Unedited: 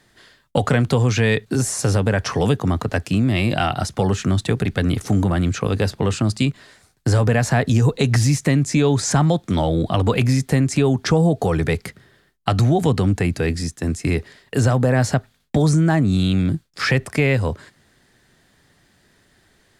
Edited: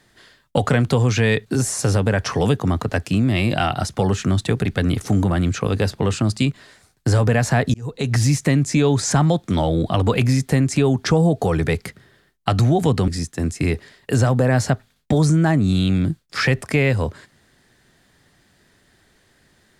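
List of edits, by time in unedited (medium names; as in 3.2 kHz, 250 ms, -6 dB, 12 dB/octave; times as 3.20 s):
7.74–8.25 s: fade in
13.08–13.52 s: delete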